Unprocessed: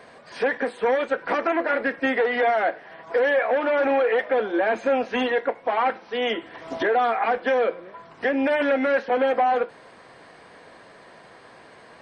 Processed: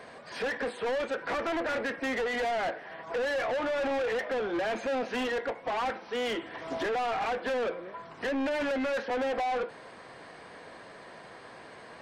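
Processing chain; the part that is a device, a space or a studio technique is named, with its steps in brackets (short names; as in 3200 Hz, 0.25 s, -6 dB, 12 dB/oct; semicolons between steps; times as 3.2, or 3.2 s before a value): saturation between pre-emphasis and de-emphasis (high shelf 3500 Hz +8.5 dB; soft clip -27.5 dBFS, distortion -7 dB; high shelf 3500 Hz -8.5 dB)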